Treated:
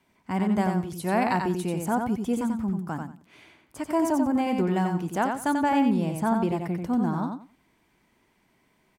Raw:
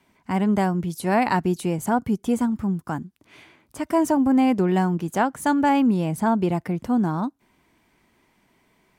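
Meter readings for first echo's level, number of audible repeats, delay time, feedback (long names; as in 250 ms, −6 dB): −5.0 dB, 3, 90 ms, 20%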